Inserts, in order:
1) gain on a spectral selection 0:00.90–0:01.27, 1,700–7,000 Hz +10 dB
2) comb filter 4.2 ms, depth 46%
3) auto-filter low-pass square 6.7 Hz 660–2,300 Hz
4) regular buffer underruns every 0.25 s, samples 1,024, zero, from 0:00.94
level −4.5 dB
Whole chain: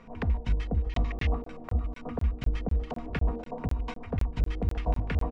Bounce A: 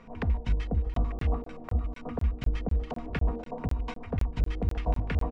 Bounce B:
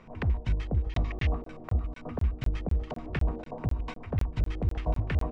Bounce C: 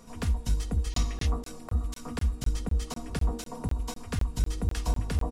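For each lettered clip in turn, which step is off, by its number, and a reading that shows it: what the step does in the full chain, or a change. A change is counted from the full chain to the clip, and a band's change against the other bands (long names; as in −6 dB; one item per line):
1, 4 kHz band −2.0 dB
2, 125 Hz band +2.0 dB
3, 4 kHz band +8.0 dB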